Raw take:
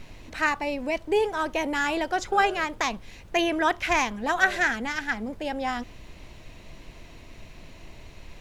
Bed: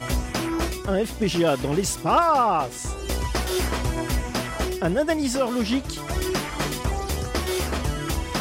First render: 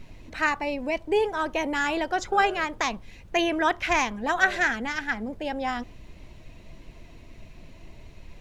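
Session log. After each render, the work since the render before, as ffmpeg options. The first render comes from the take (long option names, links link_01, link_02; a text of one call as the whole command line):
ffmpeg -i in.wav -af "afftdn=noise_reduction=6:noise_floor=-47" out.wav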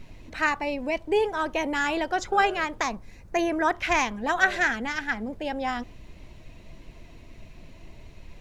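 ffmpeg -i in.wav -filter_complex "[0:a]asettb=1/sr,asplit=3[link_01][link_02][link_03];[link_01]atrim=end=2.834[link_04];[link_02]atrim=start=2.83:end=3.75,asetpts=PTS-STARTPTS,afade=type=in:duration=0.004:curve=qsin,afade=type=out:start_time=0.916:duration=0.004:curve=qsin,equalizer=frequency=3100:width_type=o:width=0.63:gain=-11.5[link_05];[link_03]atrim=start=3.746[link_06];[link_04][link_05]acrossfade=duration=0.004:curve1=hsin:curve2=qsin[link_07];[link_07][link_06]acrossfade=duration=0.004:curve1=qsin:curve2=hsin" out.wav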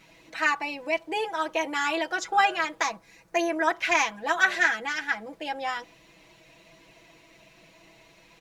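ffmpeg -i in.wav -af "highpass=frequency=720:poles=1,aecho=1:1:6.1:0.79" out.wav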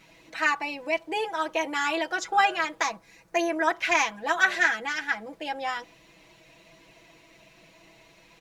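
ffmpeg -i in.wav -af anull out.wav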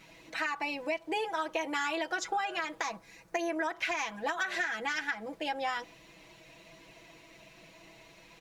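ffmpeg -i in.wav -af "alimiter=limit=-16dB:level=0:latency=1:release=129,acompressor=threshold=-29dB:ratio=6" out.wav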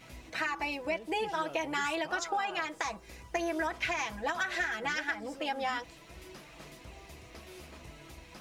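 ffmpeg -i in.wav -i bed.wav -filter_complex "[1:a]volume=-25dB[link_01];[0:a][link_01]amix=inputs=2:normalize=0" out.wav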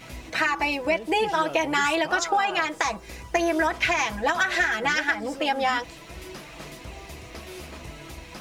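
ffmpeg -i in.wav -af "volume=9.5dB" out.wav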